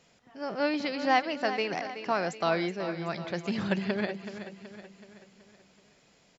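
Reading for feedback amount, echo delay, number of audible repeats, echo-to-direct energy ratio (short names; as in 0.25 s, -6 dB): 50%, 0.376 s, 4, -9.5 dB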